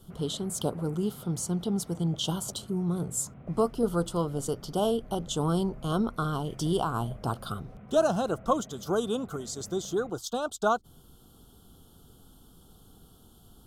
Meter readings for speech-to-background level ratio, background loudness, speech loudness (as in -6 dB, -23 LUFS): 18.5 dB, -49.0 LUFS, -30.5 LUFS